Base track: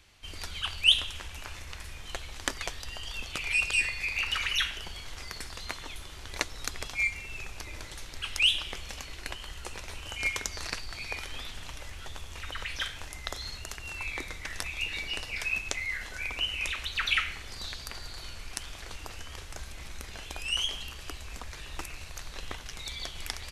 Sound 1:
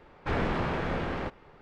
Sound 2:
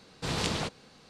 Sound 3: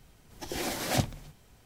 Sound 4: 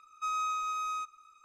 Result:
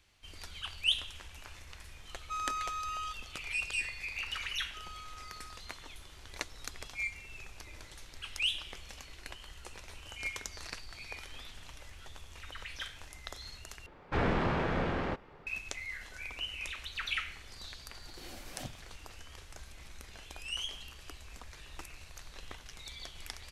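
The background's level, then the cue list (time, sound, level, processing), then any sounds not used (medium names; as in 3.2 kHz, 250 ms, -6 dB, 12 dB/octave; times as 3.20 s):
base track -8 dB
2.08 s: add 4 -4 dB
4.52 s: add 4 -17 dB
13.86 s: replace with 1 -1 dB
17.66 s: add 3 -17 dB
not used: 2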